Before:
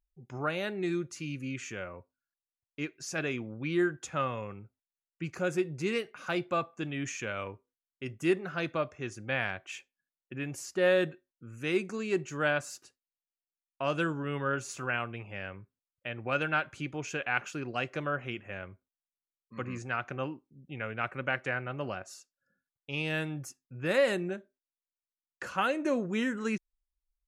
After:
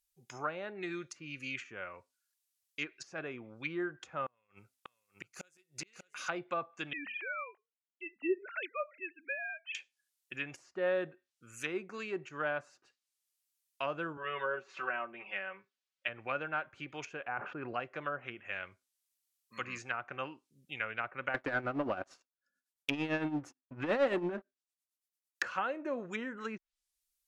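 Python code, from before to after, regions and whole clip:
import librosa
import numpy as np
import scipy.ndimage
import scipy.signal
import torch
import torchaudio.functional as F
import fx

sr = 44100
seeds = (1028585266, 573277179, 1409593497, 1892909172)

y = fx.chain(x, sr, fx.gate_flip(shuts_db=-27.0, range_db=-36),
    fx.echo_single(ms=594, db=-6.0), at=(4.26, 6.27))
y = fx.chain(y, sr, fx.sine_speech(),
    fx.hum_notches(base_hz=60, count=4), at=(6.93, 9.75))
y = fx.chain(y, sr, fx.bandpass_edges(low_hz=240.0, high_hz=3500.0),
    fx.comb(ms=5.3, depth=0.82), at=(14.17, 16.08))
y = fx.chain(y, sr, fx.lowpass(hz=1400.0, slope=12),
    fx.env_flatten(amount_pct=70), at=(17.28, 17.8))
y = fx.chain(y, sr, fx.peak_eq(hz=280.0, db=12.0, octaves=0.41),
    fx.leveller(passes=3),
    fx.tremolo(hz=8.9, depth=0.68), at=(21.34, 25.43))
y = librosa.effects.preemphasis(y, coef=0.97, zi=[0.0])
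y = fx.env_lowpass_down(y, sr, base_hz=930.0, full_db=-45.5)
y = fx.high_shelf(y, sr, hz=8200.0, db=-5.0)
y = y * 10.0 ** (16.0 / 20.0)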